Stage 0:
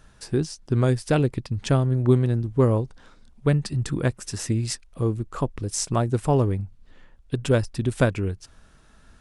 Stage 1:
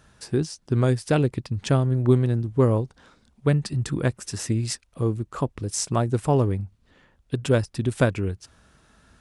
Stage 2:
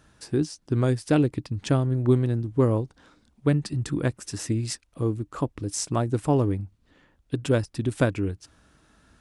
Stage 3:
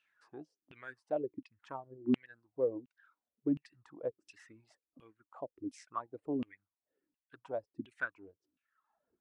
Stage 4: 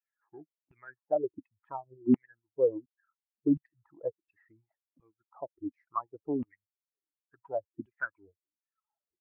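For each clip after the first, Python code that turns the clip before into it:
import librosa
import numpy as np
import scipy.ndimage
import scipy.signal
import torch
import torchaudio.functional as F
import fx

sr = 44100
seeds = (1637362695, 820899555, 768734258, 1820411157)

y1 = scipy.signal.sosfilt(scipy.signal.butter(2, 57.0, 'highpass', fs=sr, output='sos'), x)
y2 = fx.peak_eq(y1, sr, hz=300.0, db=8.5, octaves=0.21)
y2 = y2 * 10.0 ** (-2.5 / 20.0)
y3 = fx.dereverb_blind(y2, sr, rt60_s=1.2)
y3 = fx.filter_lfo_bandpass(y3, sr, shape='saw_down', hz=1.4, low_hz=240.0, high_hz=2800.0, q=7.8)
y3 = y3 * 10.0 ** (-1.0 / 20.0)
y4 = fx.bin_expand(y3, sr, power=1.5)
y4 = scipy.signal.sosfilt(scipy.signal.butter(4, 1400.0, 'lowpass', fs=sr, output='sos'), y4)
y4 = y4 * 10.0 ** (7.5 / 20.0)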